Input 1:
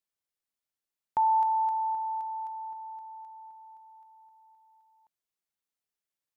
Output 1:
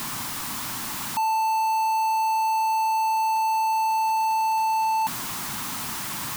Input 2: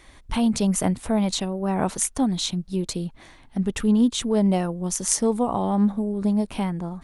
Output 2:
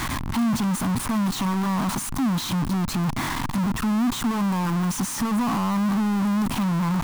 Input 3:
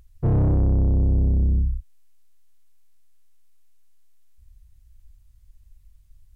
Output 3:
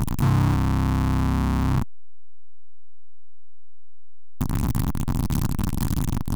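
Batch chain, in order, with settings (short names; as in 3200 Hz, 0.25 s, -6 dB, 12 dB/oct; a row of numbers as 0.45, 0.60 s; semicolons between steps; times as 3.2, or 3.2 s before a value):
infinite clipping; ten-band EQ 125 Hz +9 dB, 250 Hz +11 dB, 500 Hz -10 dB, 1000 Hz +12 dB; match loudness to -24 LUFS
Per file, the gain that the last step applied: +3.5, -7.5, -2.0 dB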